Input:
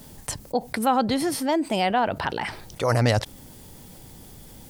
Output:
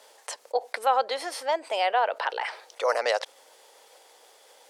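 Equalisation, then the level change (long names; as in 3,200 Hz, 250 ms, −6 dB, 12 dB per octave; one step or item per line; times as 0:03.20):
Chebyshev high-pass filter 480 Hz, order 4
high-frequency loss of the air 54 metres
0.0 dB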